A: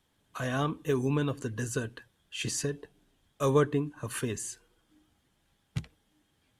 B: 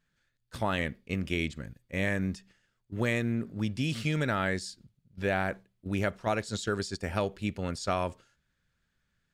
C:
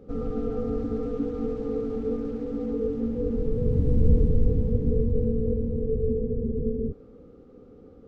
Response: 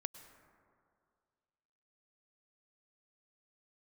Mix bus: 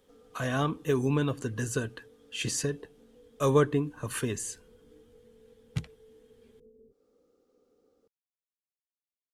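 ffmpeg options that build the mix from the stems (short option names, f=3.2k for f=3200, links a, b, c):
-filter_complex "[0:a]volume=1.5dB[a];[2:a]bass=f=250:g=-3,treble=f=4k:g=13,volume=-15dB,bass=f=250:g=-14,treble=f=4k:g=5,acompressor=threshold=-56dB:ratio=5,volume=0dB[b];[a][b]amix=inputs=2:normalize=0"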